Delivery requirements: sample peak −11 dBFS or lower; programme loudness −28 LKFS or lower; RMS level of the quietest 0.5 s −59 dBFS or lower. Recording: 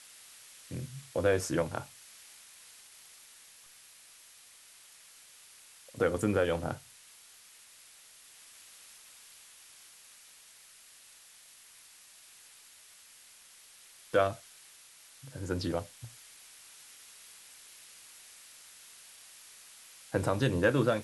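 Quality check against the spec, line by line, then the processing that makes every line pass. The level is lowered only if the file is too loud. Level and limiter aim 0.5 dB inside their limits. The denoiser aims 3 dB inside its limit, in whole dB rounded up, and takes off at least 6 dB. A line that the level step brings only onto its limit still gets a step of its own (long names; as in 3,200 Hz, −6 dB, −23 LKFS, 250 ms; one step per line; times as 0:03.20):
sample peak −13.5 dBFS: in spec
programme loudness −32.0 LKFS: in spec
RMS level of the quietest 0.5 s −56 dBFS: out of spec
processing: broadband denoise 6 dB, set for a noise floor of −56 dBFS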